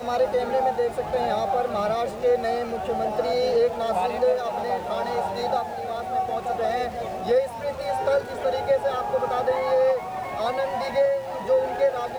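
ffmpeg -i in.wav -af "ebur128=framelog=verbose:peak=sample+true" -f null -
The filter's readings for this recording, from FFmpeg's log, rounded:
Integrated loudness:
  I:         -24.7 LUFS
  Threshold: -34.7 LUFS
Loudness range:
  LRA:         2.4 LU
  Threshold: -44.9 LUFS
  LRA low:   -26.4 LUFS
  LRA high:  -24.0 LUFS
Sample peak:
  Peak:      -12.2 dBFS
True peak:
  Peak:      -12.2 dBFS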